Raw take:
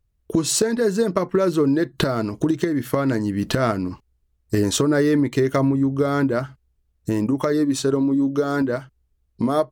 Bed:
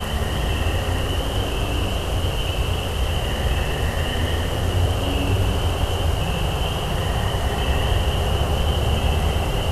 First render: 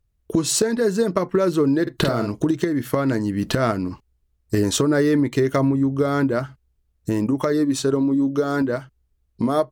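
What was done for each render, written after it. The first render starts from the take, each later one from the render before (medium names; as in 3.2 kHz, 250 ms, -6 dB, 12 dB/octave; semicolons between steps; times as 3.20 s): 1.82–2.32 s: doubling 49 ms -6 dB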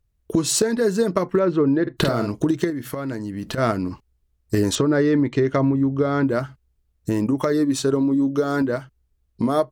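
1.39–1.97 s: low-pass 2.5 kHz; 2.70–3.58 s: compression 2:1, threshold -30 dBFS; 4.75–6.27 s: distance through air 120 m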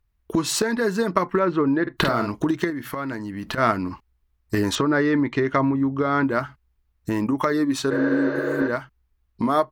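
7.93–8.66 s: spectral replace 300–6300 Hz after; graphic EQ 125/500/1000/2000/8000 Hz -5/-5/+6/+4/-6 dB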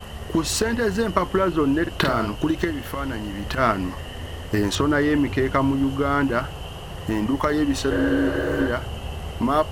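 add bed -11.5 dB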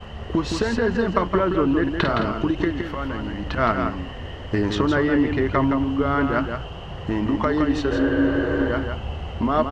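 distance through air 160 m; delay 166 ms -6 dB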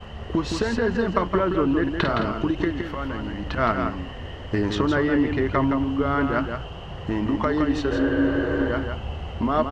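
trim -1.5 dB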